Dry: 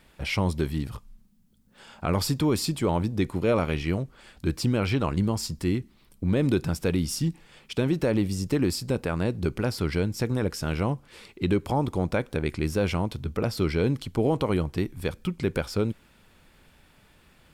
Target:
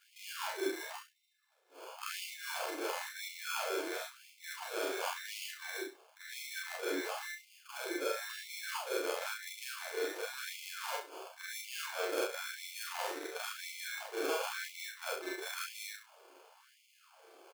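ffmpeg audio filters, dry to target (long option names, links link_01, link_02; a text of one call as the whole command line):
ffmpeg -i in.wav -filter_complex "[0:a]afftfilt=real='re':imag='-im':win_size=4096:overlap=0.75,highpass=87,highshelf=frequency=5600:gain=-3,areverse,acompressor=threshold=-36dB:ratio=16,areverse,acrusher=samples=23:mix=1:aa=0.000001,asplit=2[link_01][link_02];[link_02]adelay=31,volume=-5dB[link_03];[link_01][link_03]amix=inputs=2:normalize=0,aecho=1:1:11|67:0.531|0.299,afftfilt=real='re*gte(b*sr/1024,290*pow(2000/290,0.5+0.5*sin(2*PI*0.96*pts/sr)))':imag='im*gte(b*sr/1024,290*pow(2000/290,0.5+0.5*sin(2*PI*0.96*pts/sr)))':win_size=1024:overlap=0.75,volume=5.5dB" out.wav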